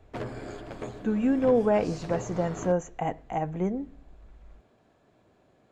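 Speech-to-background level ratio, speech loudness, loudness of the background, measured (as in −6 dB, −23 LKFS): 12.0 dB, −28.0 LKFS, −40.0 LKFS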